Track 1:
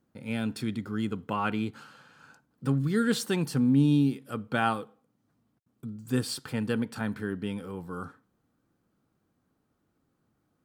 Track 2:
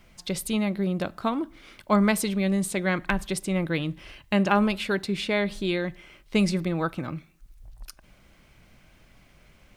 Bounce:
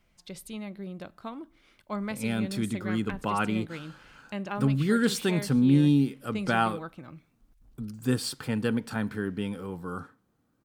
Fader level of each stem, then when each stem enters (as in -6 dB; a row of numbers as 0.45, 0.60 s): +1.5, -12.5 dB; 1.95, 0.00 s